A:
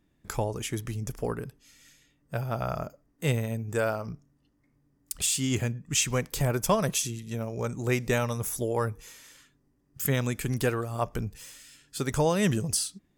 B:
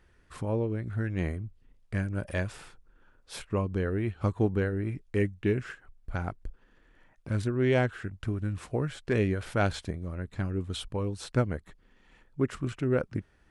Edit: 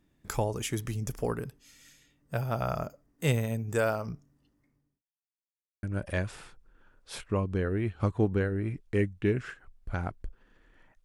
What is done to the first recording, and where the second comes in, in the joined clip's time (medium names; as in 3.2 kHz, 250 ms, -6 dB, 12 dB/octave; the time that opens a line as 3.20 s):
A
4.32–5.02 s: fade out equal-power
5.02–5.83 s: mute
5.83 s: go over to B from 2.04 s